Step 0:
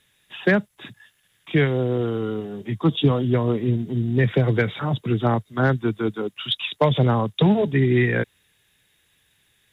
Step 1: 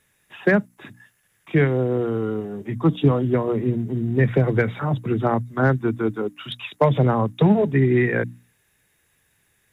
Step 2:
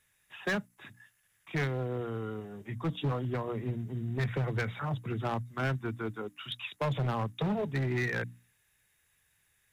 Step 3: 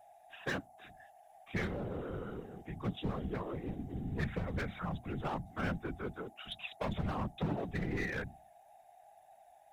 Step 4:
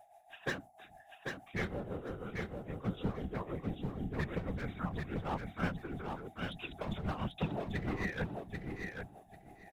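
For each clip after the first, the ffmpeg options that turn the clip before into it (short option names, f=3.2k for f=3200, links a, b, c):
-af "equalizer=f=3.4k:w=2:g=-12,bandreject=f=60:t=h:w=6,bandreject=f=120:t=h:w=6,bandreject=f=180:t=h:w=6,bandreject=f=240:t=h:w=6,bandreject=f=300:t=h:w=6,volume=1.5dB"
-af "equalizer=f=310:w=0.57:g=-9.5,asoftclip=type=hard:threshold=-21dB,volume=-5.5dB"
-af "aeval=exprs='val(0)+0.00251*sin(2*PI*740*n/s)':c=same,afftfilt=real='hypot(re,im)*cos(2*PI*random(0))':imag='hypot(re,im)*sin(2*PI*random(1))':win_size=512:overlap=0.75,volume=1dB"
-af "tremolo=f=6.2:d=0.65,aecho=1:1:791|1582|2373:0.596|0.101|0.0172,volume=1.5dB"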